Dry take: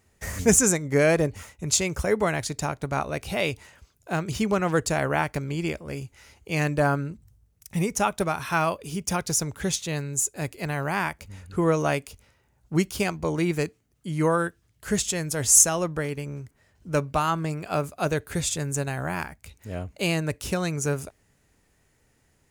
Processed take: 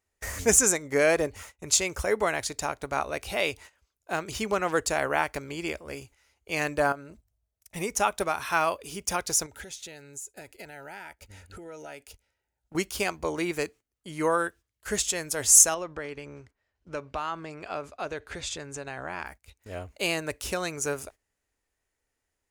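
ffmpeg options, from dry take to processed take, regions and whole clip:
-filter_complex "[0:a]asettb=1/sr,asplit=3[a][b][c];[a]atrim=end=6.924[d];[b]atrim=start=6.92:end=7.76,asetpts=PTS-STARTPTS,afade=t=in:d=0.004:c=qsin,afade=t=out:st=0.836:d=0.004:c=qsin,equalizer=f=650:w=4.8:g=11.5,acompressor=threshold=-31dB:ratio=6:attack=3.2:release=140:knee=1:detection=peak[e];[c]atrim=start=7.756[f];[d][e]acrossfade=d=0.004:c1=hsin:c2=qsin[g];[g][f]acrossfade=d=0.004:c1=qsin:c2=hsin,asettb=1/sr,asplit=3[h][i][j];[h]atrim=end=9.464[k];[i]atrim=start=9.46:end=12.75,asetpts=PTS-STARTPTS,afade=t=in:d=0.004:c=qsin,afade=t=out:st=3.286:d=0.004:c=qsin,acompressor=threshold=-35dB:ratio=10:attack=3.2:release=140:knee=1:detection=peak,asuperstop=centerf=1100:order=20:qfactor=4.3[l];[j]atrim=start=12.746[m];[k][l]acrossfade=d=0.004:c1=hsin:c2=qsin[n];[n][m]acrossfade=d=0.004:c1=qsin:c2=hsin,asettb=1/sr,asplit=3[o][p][q];[o]atrim=end=15.744[r];[p]atrim=start=15.74:end=19.26,asetpts=PTS-STARTPTS,afade=t=in:d=0.004:c=qsin,afade=t=out:st=3.516:d=0.004:c=qsin,lowpass=4.9k,acompressor=threshold=-29dB:ratio=2.5:attack=3.2:release=140:knee=1:detection=peak[s];[q]atrim=start=19.256[t];[r][s]acrossfade=d=0.004:c1=hsin:c2=qsin[u];[u][t]acrossfade=d=0.004:c1=qsin:c2=hsin,agate=range=-14dB:threshold=-44dB:ratio=16:detection=peak,equalizer=f=150:t=o:w=1.5:g=-14"

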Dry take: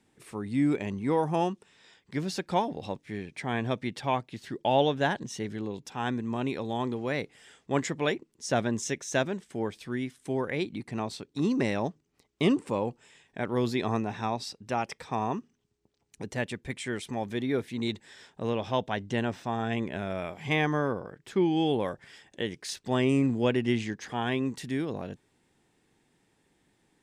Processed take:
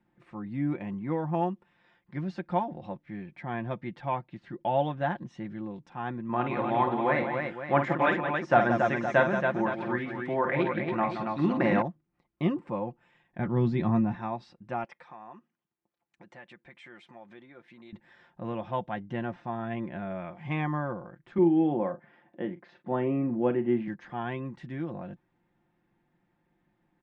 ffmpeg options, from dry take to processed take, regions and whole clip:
-filter_complex "[0:a]asettb=1/sr,asplit=3[a][b][c];[a]atrim=end=6.294[d];[b]atrim=start=6.29:end=11.82,asetpts=PTS-STARTPTS,afade=t=in:d=0.004:c=qsin,afade=t=out:st=5.526:d=0.004:c=qsin,deesser=0.75,equalizer=f=1.3k:w=0.32:g=10.5,aecho=1:1:50|174|279|515:0.422|0.355|0.562|0.282,atrim=end_sample=243873[e];[c]atrim=start=11.816[f];[d][e]acrossfade=d=0.004:c1=hsin:c2=qsin[g];[g][f]acrossfade=d=0.004:c1=qsin:c2=hsin,asettb=1/sr,asplit=3[h][i][j];[h]atrim=end=13.394[k];[i]atrim=start=13.39:end=14.15,asetpts=PTS-STARTPTS,afade=t=in:d=0.004:c=qsin,afade=t=out:st=0.756:d=0.004:c=qsin,lowpass=7.5k,bass=f=250:g=13,treble=f=4k:g=5,asplit=2[l][m];[m]adelay=13,volume=-11dB[n];[l][n]amix=inputs=2:normalize=0,atrim=end_sample=33516[o];[j]atrim=start=14.146[p];[k][o]acrossfade=d=0.004:c1=hsin:c2=qsin[q];[q][p]acrossfade=d=0.004:c1=qsin:c2=hsin,asettb=1/sr,asplit=3[r][s][t];[r]atrim=end=14.844[u];[s]atrim=start=14.84:end=17.93,asetpts=PTS-STARTPTS,afade=t=in:d=0.004:c=qsin,afade=t=out:st=3.086:d=0.004:c=qsin,acompressor=threshold=-35dB:ratio=5:attack=3.2:release=140:knee=1:detection=peak,highpass=f=710:p=1[v];[t]atrim=start=17.926[w];[u][v]acrossfade=d=0.004:c1=hsin:c2=qsin[x];[x][w]acrossfade=d=0.004:c1=qsin:c2=hsin,asettb=1/sr,asplit=3[y][z][aa];[y]atrim=end=21.384[ab];[z]atrim=start=21.38:end=23.88,asetpts=PTS-STARTPTS,afade=t=in:d=0.004:c=qsin,afade=t=out:st=2.496:d=0.004:c=qsin,highpass=220,lowpass=3.3k,tiltshelf=f=1.2k:g=6.5,asplit=2[ac][ad];[ad]adelay=41,volume=-12dB[ae];[ac][ae]amix=inputs=2:normalize=0,atrim=end_sample=110250[af];[aa]atrim=start=23.876[ag];[ab][af]acrossfade=d=0.004:c1=hsin:c2=qsin[ah];[ah][ag]acrossfade=d=0.004:c1=qsin:c2=hsin,lowpass=1.7k,equalizer=f=430:w=6:g=-14,aecho=1:1:5.7:0.52,volume=-2.5dB"

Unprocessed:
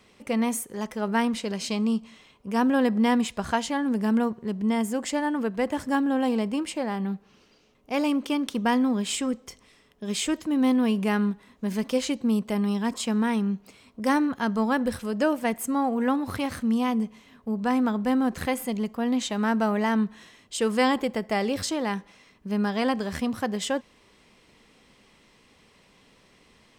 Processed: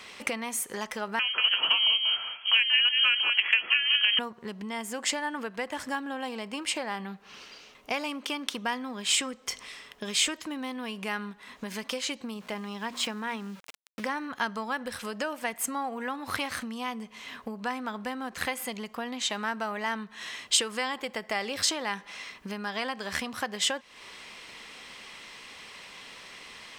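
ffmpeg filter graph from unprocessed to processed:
-filter_complex "[0:a]asettb=1/sr,asplit=3[a][b][c];[a]atrim=end=1.194[d];[b]atrim=start=1.19:end=4.19,asetpts=PTS-STARTPTS,afade=t=in:d=0.004:c=qsin,afade=t=out:st=2.996:d=0.004:c=qsin,lowshelf=f=350:t=q:w=1.5:g=-9.5,asplit=2[e][f];[f]adelay=187,lowpass=f=2.3k:p=1,volume=-8dB,asplit=2[g][h];[h]adelay=187,lowpass=f=2.3k:p=1,volume=0.22,asplit=2[i][j];[j]adelay=187,lowpass=f=2.3k:p=1,volume=0.22[k];[e][g][i][k]amix=inputs=4:normalize=0,atrim=end_sample=132300,lowpass=f=2.9k:t=q:w=0.5098,lowpass=f=2.9k:t=q:w=0.6013,lowpass=f=2.9k:t=q:w=0.9,lowpass=f=2.9k:t=q:w=2.563,afreqshift=-3400[l];[c]atrim=start=4.186[m];[d][l]acrossfade=d=0.004:c1=hsin:c2=qsin[n];[n][m]acrossfade=d=0.004:c1=qsin:c2=hsin,asettb=1/sr,asplit=3[o][p][q];[o]atrim=end=12.344[r];[p]atrim=start=12.34:end=14.18,asetpts=PTS-STARTPTS,afade=t=in:d=0.004:c=qsin,afade=t=out:st=1.836:d=0.004:c=qsin,lowpass=f=3.1k:p=1,bandreject=f=60:t=h:w=6,bandreject=f=120:t=h:w=6,bandreject=f=180:t=h:w=6,bandreject=f=240:t=h:w=6,aeval=exprs='val(0)*gte(abs(val(0)),0.00596)':c=same[s];[q]atrim=start=14.176[t];[r][s]acrossfade=d=0.004:c1=hsin:c2=qsin[u];[u][t]acrossfade=d=0.004:c1=qsin:c2=hsin,highshelf=f=5.2k:g=-8,acompressor=threshold=-37dB:ratio=10,tiltshelf=f=650:g=-10,volume=8.5dB"

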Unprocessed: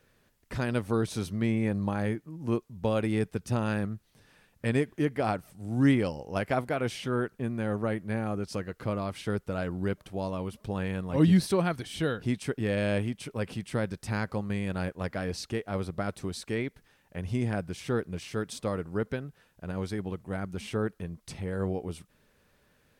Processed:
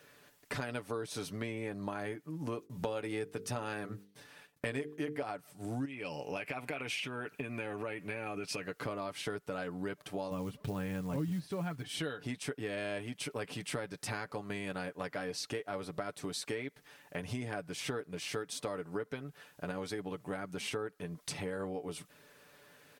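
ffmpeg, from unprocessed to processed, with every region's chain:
-filter_complex "[0:a]asettb=1/sr,asplit=3[a][b][c];[a]atrim=end=2.584[d];[b]atrim=start=2.58:end=5.23,asetpts=PTS-STARTPTS,afade=t=in:d=0.004:c=qsin,afade=t=out:st=2.646:d=0.004:c=qsin,agate=range=-33dB:threshold=-55dB:ratio=3:release=100:detection=peak,bandreject=f=50:t=h:w=6,bandreject=f=100:t=h:w=6,bandreject=f=150:t=h:w=6,bandreject=f=200:t=h:w=6,bandreject=f=250:t=h:w=6,bandreject=f=300:t=h:w=6,bandreject=f=350:t=h:w=6,bandreject=f=400:t=h:w=6,bandreject=f=450:t=h:w=6,bandreject=f=500:t=h:w=6,acontrast=32[e];[c]atrim=start=5.226[f];[d][e]acrossfade=d=0.004:c1=hsin:c2=qsin[g];[g][f]acrossfade=d=0.004:c1=qsin:c2=hsin,asettb=1/sr,asplit=3[h][i][j];[h]atrim=end=5.854[k];[i]atrim=start=5.85:end=8.64,asetpts=PTS-STARTPTS,afade=t=in:d=0.004:c=qsin,afade=t=out:st=2.786:d=0.004:c=qsin,equalizer=f=2.5k:t=o:w=0.35:g=15,acompressor=threshold=-30dB:ratio=16:attack=3.2:release=140:knee=1:detection=peak[l];[j]atrim=start=8.636[m];[k][l]acrossfade=d=0.004:c1=hsin:c2=qsin[n];[n][m]acrossfade=d=0.004:c1=qsin:c2=hsin,asettb=1/sr,asplit=3[o][p][q];[o]atrim=end=10.314[r];[p]atrim=start=10.31:end=11.89,asetpts=PTS-STARTPTS,afade=t=in:d=0.004:c=qsin,afade=t=out:st=1.576:d=0.004:c=qsin,bass=f=250:g=12,treble=f=4k:g=-9,acrusher=bits=8:mode=log:mix=0:aa=0.000001[s];[q]atrim=start=11.886[t];[r][s]acrossfade=d=0.004:c1=hsin:c2=qsin[u];[u][t]acrossfade=d=0.004:c1=qsin:c2=hsin,highpass=f=370:p=1,aecho=1:1:6.9:0.56,acompressor=threshold=-43dB:ratio=6,volume=7dB"

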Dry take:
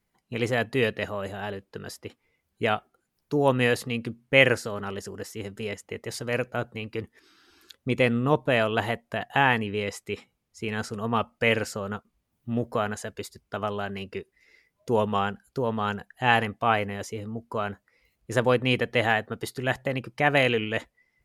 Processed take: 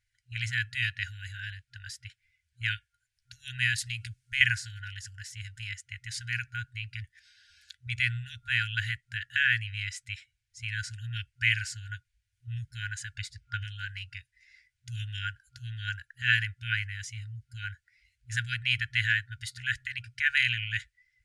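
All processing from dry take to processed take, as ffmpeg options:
-filter_complex "[0:a]asettb=1/sr,asplit=3[a][b][c];[a]atrim=end=3.784[d];[b]atrim=start=3.78:end=4.41,asetpts=PTS-STARTPTS,afade=t=in:d=0.004:c=qsin,afade=t=out:st=0.626:d=0.004:c=qsin,bass=f=250:g=2,treble=f=4k:g=10,acompressor=threshold=-26dB:ratio=3:attack=3.2:release=140:knee=1:detection=peak[e];[c]atrim=start=4.406[f];[d][e]acrossfade=d=0.004:c1=hsin:c2=qsin[g];[g][f]acrossfade=d=0.004:c1=qsin:c2=hsin,asettb=1/sr,asplit=3[h][i][j];[h]atrim=end=13.174[k];[i]atrim=start=13.17:end=13.64,asetpts=PTS-STARTPTS,afade=t=in:d=0.004:c=qsin,afade=t=out:st=0.466:d=0.004:c=qsin,aemphasis=mode=reproduction:type=50kf,acontrast=60[l];[j]atrim=start=13.636[m];[k][l]acrossfade=d=0.004:c1=hsin:c2=qsin[n];[n][m]acrossfade=d=0.004:c1=qsin:c2=hsin,afftfilt=real='re*(1-between(b*sr/4096,120,1400))':imag='im*(1-between(b*sr/4096,120,1400))':win_size=4096:overlap=0.75,lowpass=f=9.3k:w=0.5412,lowpass=f=9.3k:w=1.3066"

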